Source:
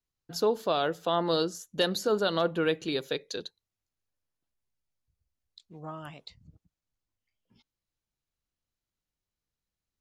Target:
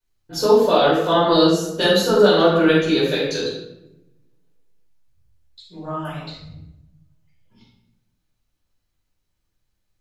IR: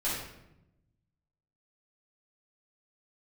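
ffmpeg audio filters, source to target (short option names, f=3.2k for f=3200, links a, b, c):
-filter_complex "[0:a]asettb=1/sr,asplit=3[a][b][c];[a]atrim=end=3.014[d];[b]atrim=start=3.01:end=3.41,asetpts=PTS-STARTPTS,afade=t=in:d=0.004:c=qsin,afade=t=out:st=0.396:d=0.004:c=qsin,asplit=2[e][f];[f]adelay=26,volume=-7dB[g];[e][g]amix=inputs=2:normalize=0,atrim=end_sample=17640[h];[c]atrim=start=3.406[i];[d][h]acrossfade=d=0.004:c1=hsin:c2=qsin[j];[j][i]acrossfade=d=0.004:c1=qsin:c2=hsin[k];[1:a]atrim=start_sample=2205[l];[k][l]afir=irnorm=-1:irlink=0,volume=4.5dB"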